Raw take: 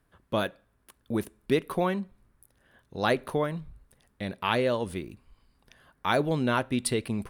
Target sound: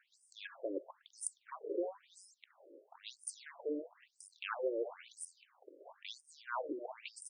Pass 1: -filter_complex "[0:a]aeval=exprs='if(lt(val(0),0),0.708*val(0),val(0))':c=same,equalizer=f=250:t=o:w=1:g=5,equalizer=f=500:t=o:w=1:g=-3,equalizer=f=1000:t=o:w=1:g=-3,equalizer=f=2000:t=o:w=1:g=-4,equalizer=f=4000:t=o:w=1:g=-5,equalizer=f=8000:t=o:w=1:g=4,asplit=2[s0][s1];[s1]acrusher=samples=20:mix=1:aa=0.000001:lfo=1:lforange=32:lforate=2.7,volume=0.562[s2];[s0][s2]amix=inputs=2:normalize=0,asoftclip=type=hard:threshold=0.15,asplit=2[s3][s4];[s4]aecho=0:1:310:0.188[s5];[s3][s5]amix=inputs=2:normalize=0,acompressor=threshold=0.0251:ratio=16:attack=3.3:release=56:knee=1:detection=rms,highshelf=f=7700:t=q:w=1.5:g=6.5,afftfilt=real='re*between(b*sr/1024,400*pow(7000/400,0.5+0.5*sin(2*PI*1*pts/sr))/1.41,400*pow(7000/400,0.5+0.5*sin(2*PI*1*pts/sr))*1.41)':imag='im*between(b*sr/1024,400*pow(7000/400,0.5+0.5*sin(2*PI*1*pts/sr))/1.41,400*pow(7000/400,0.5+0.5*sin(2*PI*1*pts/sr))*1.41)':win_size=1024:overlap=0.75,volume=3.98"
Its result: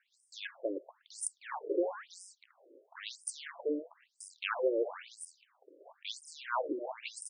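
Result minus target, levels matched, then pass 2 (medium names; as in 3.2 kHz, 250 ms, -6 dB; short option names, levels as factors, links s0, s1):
compression: peak gain reduction -6 dB; decimation with a swept rate: distortion +9 dB
-filter_complex "[0:a]aeval=exprs='if(lt(val(0),0),0.708*val(0),val(0))':c=same,equalizer=f=250:t=o:w=1:g=5,equalizer=f=500:t=o:w=1:g=-3,equalizer=f=1000:t=o:w=1:g=-3,equalizer=f=2000:t=o:w=1:g=-4,equalizer=f=4000:t=o:w=1:g=-5,equalizer=f=8000:t=o:w=1:g=4,asplit=2[s0][s1];[s1]acrusher=samples=5:mix=1:aa=0.000001:lfo=1:lforange=8:lforate=2.7,volume=0.562[s2];[s0][s2]amix=inputs=2:normalize=0,asoftclip=type=hard:threshold=0.15,asplit=2[s3][s4];[s4]aecho=0:1:310:0.188[s5];[s3][s5]amix=inputs=2:normalize=0,acompressor=threshold=0.0119:ratio=16:attack=3.3:release=56:knee=1:detection=rms,highshelf=f=7700:t=q:w=1.5:g=6.5,afftfilt=real='re*between(b*sr/1024,400*pow(7000/400,0.5+0.5*sin(2*PI*1*pts/sr))/1.41,400*pow(7000/400,0.5+0.5*sin(2*PI*1*pts/sr))*1.41)':imag='im*between(b*sr/1024,400*pow(7000/400,0.5+0.5*sin(2*PI*1*pts/sr))/1.41,400*pow(7000/400,0.5+0.5*sin(2*PI*1*pts/sr))*1.41)':win_size=1024:overlap=0.75,volume=3.98"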